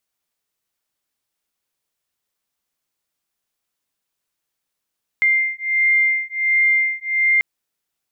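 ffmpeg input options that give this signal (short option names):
-f lavfi -i "aevalsrc='0.126*(sin(2*PI*2100*t)+sin(2*PI*2101.4*t))':d=2.19:s=44100"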